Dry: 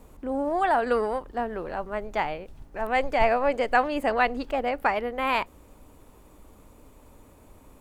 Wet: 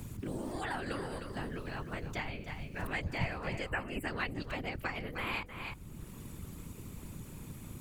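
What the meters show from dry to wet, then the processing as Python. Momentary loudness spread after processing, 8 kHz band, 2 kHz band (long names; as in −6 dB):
11 LU, can't be measured, −8.5 dB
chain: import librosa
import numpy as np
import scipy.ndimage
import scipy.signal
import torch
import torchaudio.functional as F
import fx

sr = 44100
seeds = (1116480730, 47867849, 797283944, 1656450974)

y = fx.spec_erase(x, sr, start_s=3.69, length_s=0.35, low_hz=3000.0, high_hz=7400.0)
y = fx.tone_stack(y, sr, knobs='6-0-2')
y = fx.whisperise(y, sr, seeds[0])
y = y + 10.0 ** (-11.0 / 20.0) * np.pad(y, (int(307 * sr / 1000.0), 0))[:len(y)]
y = fx.band_squash(y, sr, depth_pct=70)
y = y * 10.0 ** (11.0 / 20.0)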